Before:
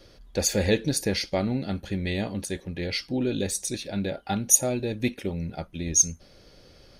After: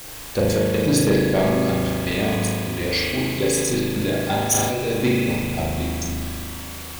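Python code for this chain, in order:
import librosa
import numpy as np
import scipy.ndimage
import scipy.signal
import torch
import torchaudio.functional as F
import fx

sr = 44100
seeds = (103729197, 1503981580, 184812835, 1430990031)

p1 = fx.hpss(x, sr, part='harmonic', gain_db=-8)
p2 = fx.step_gate(p1, sr, bpm=182, pattern='xxxxx.x..xxxxx..', floor_db=-60.0, edge_ms=4.5)
p3 = fx.quant_dither(p2, sr, seeds[0], bits=6, dither='triangular')
p4 = p2 + F.gain(torch.from_numpy(p3), -5.0).numpy()
p5 = fx.rev_spring(p4, sr, rt60_s=2.7, pass_ms=(38,), chirp_ms=20, drr_db=-2.5)
p6 = 10.0 ** (-15.5 / 20.0) * np.tanh(p5 / 10.0 ** (-15.5 / 20.0))
p7 = p6 + fx.room_flutter(p6, sr, wall_m=6.6, rt60_s=0.35, dry=0)
p8 = fx.sustainer(p7, sr, db_per_s=32.0)
y = F.gain(torch.from_numpy(p8), 2.5).numpy()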